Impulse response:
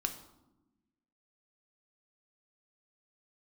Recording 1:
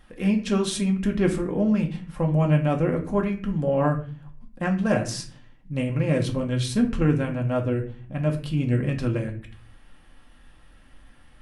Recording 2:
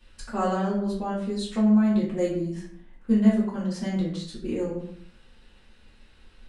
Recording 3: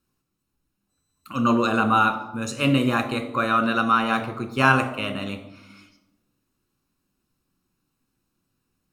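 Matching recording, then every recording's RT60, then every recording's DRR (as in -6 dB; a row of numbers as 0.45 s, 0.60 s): 3; 0.45 s, 0.65 s, 1.0 s; 1.0 dB, -8.5 dB, 5.5 dB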